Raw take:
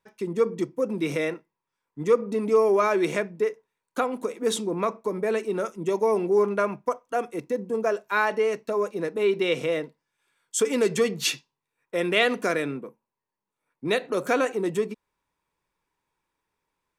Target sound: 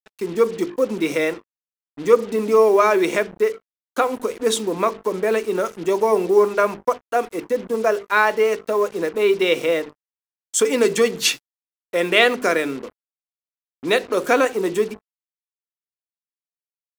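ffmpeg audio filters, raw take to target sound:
-filter_complex "[0:a]asplit=2[s0][s1];[s1]aeval=exprs='sgn(val(0))*max(abs(val(0))-0.0141,0)':c=same,volume=0.335[s2];[s0][s2]amix=inputs=2:normalize=0,highpass=100,equalizer=f=140:t=o:w=0.79:g=-8.5,bandreject=f=50:t=h:w=6,bandreject=f=100:t=h:w=6,bandreject=f=150:t=h:w=6,bandreject=f=200:t=h:w=6,bandreject=f=250:t=h:w=6,bandreject=f=300:t=h:w=6,bandreject=f=350:t=h:w=6,bandreject=f=400:t=h:w=6,bandreject=f=450:t=h:w=6,acrusher=bits=6:mix=0:aa=0.5,volume=1.68"

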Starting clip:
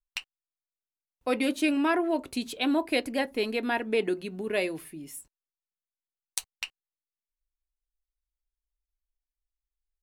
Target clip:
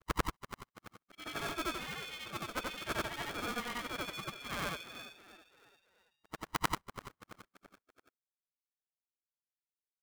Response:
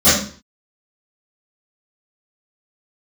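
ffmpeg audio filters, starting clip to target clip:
-filter_complex "[0:a]afftfilt=real='re':imag='-im':win_size=8192:overlap=0.75,highpass=f=320:w=0.5412,highpass=f=320:w=1.3066,aemphasis=mode=reproduction:type=75fm,afftdn=nr=18:nf=-48,areverse,acompressor=threshold=0.00501:ratio=5,areverse,aexciter=amount=11.2:drive=7.4:freq=2100,asplit=2[s0][s1];[s1]asplit=4[s2][s3][s4][s5];[s2]adelay=335,afreqshift=-82,volume=0.188[s6];[s3]adelay=670,afreqshift=-164,volume=0.0832[s7];[s4]adelay=1005,afreqshift=-246,volume=0.0363[s8];[s5]adelay=1340,afreqshift=-328,volume=0.016[s9];[s6][s7][s8][s9]amix=inputs=4:normalize=0[s10];[s0][s10]amix=inputs=2:normalize=0,lowpass=f=2800:t=q:w=0.5098,lowpass=f=2800:t=q:w=0.6013,lowpass=f=2800:t=q:w=0.9,lowpass=f=2800:t=q:w=2.563,afreqshift=-3300,aeval=exprs='val(0)*sgn(sin(2*PI*490*n/s))':c=same"

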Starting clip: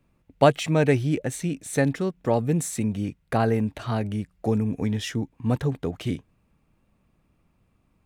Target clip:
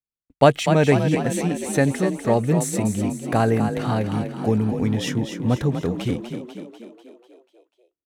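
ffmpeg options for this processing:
-filter_complex "[0:a]agate=range=0.00794:threshold=0.00355:ratio=16:detection=peak,asplit=2[s0][s1];[s1]asplit=7[s2][s3][s4][s5][s6][s7][s8];[s2]adelay=246,afreqshift=36,volume=0.398[s9];[s3]adelay=492,afreqshift=72,volume=0.226[s10];[s4]adelay=738,afreqshift=108,volume=0.129[s11];[s5]adelay=984,afreqshift=144,volume=0.0741[s12];[s6]adelay=1230,afreqshift=180,volume=0.0422[s13];[s7]adelay=1476,afreqshift=216,volume=0.024[s14];[s8]adelay=1722,afreqshift=252,volume=0.0136[s15];[s9][s10][s11][s12][s13][s14][s15]amix=inputs=7:normalize=0[s16];[s0][s16]amix=inputs=2:normalize=0,volume=1.41"

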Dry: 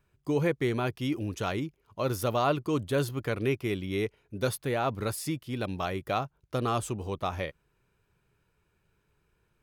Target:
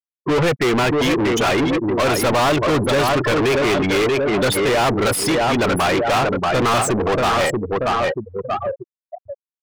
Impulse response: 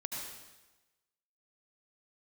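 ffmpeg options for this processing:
-filter_complex "[0:a]aecho=1:1:633|1266|1899|2532|3165:0.398|0.171|0.0736|0.0317|0.0136,afftfilt=real='re*gte(hypot(re,im),0.0178)':imag='im*gte(hypot(re,im),0.0178)':win_size=1024:overlap=0.75,asplit=2[s0][s1];[s1]highpass=f=720:p=1,volume=63.1,asoftclip=type=tanh:threshold=0.2[s2];[s0][s2]amix=inputs=2:normalize=0,lowpass=f=5500:p=1,volume=0.501,volume=1.5"

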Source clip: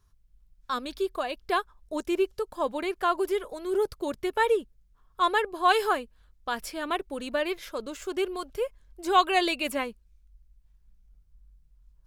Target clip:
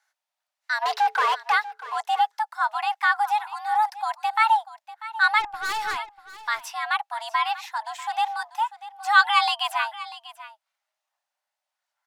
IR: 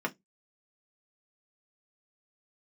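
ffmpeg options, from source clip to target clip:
-filter_complex "[0:a]highpass=f=300:w=0.5412,highpass=f=300:w=1.3066,highshelf=f=8600:g=-11,asplit=3[s0][s1][s2];[s0]afade=t=out:st=0.81:d=0.02[s3];[s1]asplit=2[s4][s5];[s5]highpass=f=720:p=1,volume=50.1,asoftclip=type=tanh:threshold=0.141[s6];[s4][s6]amix=inputs=2:normalize=0,lowpass=f=1000:p=1,volume=0.501,afade=t=in:st=0.81:d=0.02,afade=t=out:st=1.52:d=0.02[s7];[s2]afade=t=in:st=1.52:d=0.02[s8];[s3][s7][s8]amix=inputs=3:normalize=0,afreqshift=430,asplit=3[s9][s10][s11];[s9]afade=t=out:st=5.39:d=0.02[s12];[s10]aeval=exprs='(tanh(31.6*val(0)+0.25)-tanh(0.25))/31.6':c=same,afade=t=in:st=5.39:d=0.02,afade=t=out:st=5.96:d=0.02[s13];[s11]afade=t=in:st=5.96:d=0.02[s14];[s12][s13][s14]amix=inputs=3:normalize=0,asplit=2[s15][s16];[s16]aecho=0:1:642:0.158[s17];[s15][s17]amix=inputs=2:normalize=0,volume=1.68"

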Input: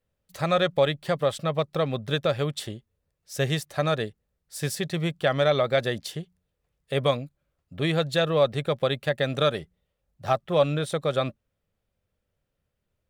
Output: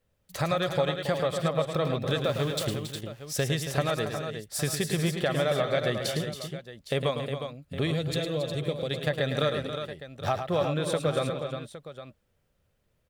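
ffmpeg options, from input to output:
-filter_complex "[0:a]asettb=1/sr,asplit=3[s0][s1][s2];[s0]atrim=end=2.184[s3];[s1]atrim=start=2.18:end=2.66,asetpts=PTS-STARTPTS,afade=t=in:d=0.004:c=qsin,afade=t=out:st=0.476:d=0.004:c=qsin,aeval=exprs='val(0)*gte(abs(val(0)),0.0168)':c=same[s4];[s2]atrim=start=2.656[s5];[s3][s4]acrossfade=d=0.004:c1=hsin:c2=qsin[s6];[s6][s5]acrossfade=d=0.004:c1=qsin:c2=hsin,acompressor=threshold=0.0282:ratio=4,asettb=1/sr,asplit=3[s7][s8][s9];[s7]atrim=end=7.874[s10];[s8]atrim=start=7.87:end=8.91,asetpts=PTS-STARTPTS,afade=t=in:d=0.004:c=qsin,afade=t=out:st=1.036:d=0.004:c=qsin,equalizer=f=1200:t=o:w=1.9:g=-12[s11];[s9]atrim=start=8.906[s12];[s10][s11]acrossfade=d=0.004:c1=hsin:c2=qsin[s13];[s13][s12]acrossfade=d=0.004:c1=qsin:c2=hsin,aecho=1:1:107|276|360|812:0.398|0.299|0.398|0.2,volume=1.78"

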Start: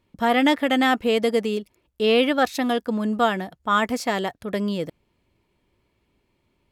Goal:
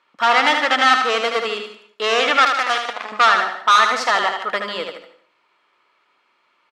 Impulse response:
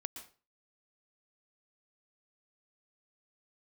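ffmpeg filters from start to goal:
-filter_complex "[0:a]equalizer=f=1300:w=2.5:g=11.5,asettb=1/sr,asplit=3[s0][s1][s2];[s0]atrim=end=2.504[s3];[s1]atrim=start=2.5:end=3.12,asetpts=PTS-STARTPTS,afade=t=in:d=0.004:c=qsin,afade=t=out:st=0.616:d=0.004:c=qsin,acrusher=bits=2:mix=0:aa=0.5[s4];[s2]atrim=start=3.116[s5];[s3][s4]acrossfade=d=0.004:c1=hsin:c2=qsin[s6];[s6][s5]acrossfade=d=0.004:c1=qsin:c2=hsin,volume=7.94,asoftclip=hard,volume=0.126,highpass=790,lowpass=4900,aecho=1:1:77|150:0.501|0.237,asplit=2[s7][s8];[1:a]atrim=start_sample=2205,asetrate=35721,aresample=44100[s9];[s8][s9]afir=irnorm=-1:irlink=0,volume=0.75[s10];[s7][s10]amix=inputs=2:normalize=0,volume=1.78"

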